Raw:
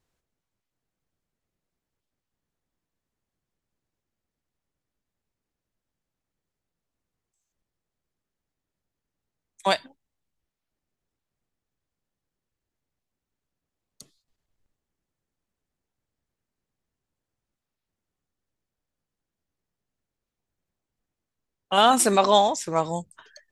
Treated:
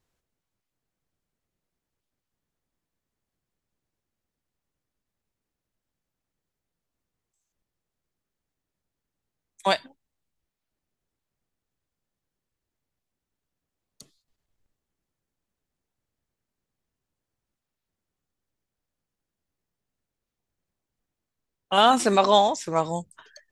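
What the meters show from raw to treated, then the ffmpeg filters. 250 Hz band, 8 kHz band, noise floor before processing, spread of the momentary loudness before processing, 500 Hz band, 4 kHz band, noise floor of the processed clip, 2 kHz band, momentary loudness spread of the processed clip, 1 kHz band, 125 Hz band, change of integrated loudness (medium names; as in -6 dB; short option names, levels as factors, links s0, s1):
0.0 dB, -7.0 dB, under -85 dBFS, 12 LU, 0.0 dB, 0.0 dB, under -85 dBFS, 0.0 dB, 11 LU, 0.0 dB, 0.0 dB, -0.5 dB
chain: -filter_complex "[0:a]acrossover=split=6600[s0][s1];[s1]acompressor=threshold=0.00794:ratio=4:attack=1:release=60[s2];[s0][s2]amix=inputs=2:normalize=0"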